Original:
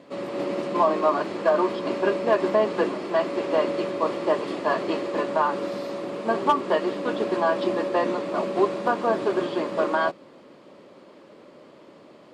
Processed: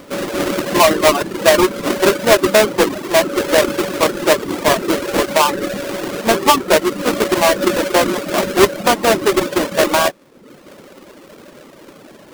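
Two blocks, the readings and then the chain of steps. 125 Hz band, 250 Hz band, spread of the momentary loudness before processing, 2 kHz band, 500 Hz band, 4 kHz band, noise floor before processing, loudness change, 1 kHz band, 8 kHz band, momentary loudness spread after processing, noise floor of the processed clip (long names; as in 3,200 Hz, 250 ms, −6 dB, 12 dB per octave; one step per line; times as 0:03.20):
+11.5 dB, +9.0 dB, 5 LU, +13.0 dB, +8.5 dB, +18.5 dB, −50 dBFS, +9.5 dB, +8.0 dB, can't be measured, 6 LU, −42 dBFS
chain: each half-wave held at its own peak
reverb reduction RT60 0.78 s
level +6.5 dB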